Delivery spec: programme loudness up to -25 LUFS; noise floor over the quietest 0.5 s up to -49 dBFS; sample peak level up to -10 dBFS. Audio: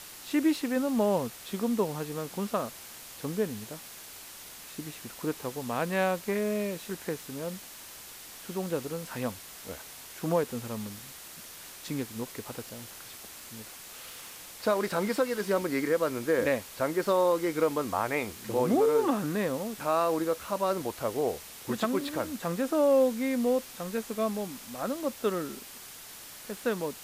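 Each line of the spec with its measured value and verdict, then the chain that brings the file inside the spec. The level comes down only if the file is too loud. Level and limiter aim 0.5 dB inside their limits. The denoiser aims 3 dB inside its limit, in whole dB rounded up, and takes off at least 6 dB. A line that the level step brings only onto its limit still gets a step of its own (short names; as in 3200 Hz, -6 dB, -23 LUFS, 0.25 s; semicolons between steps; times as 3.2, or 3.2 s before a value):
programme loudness -30.5 LUFS: OK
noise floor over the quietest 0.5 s -46 dBFS: fail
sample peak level -15.0 dBFS: OK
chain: denoiser 6 dB, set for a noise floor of -46 dBFS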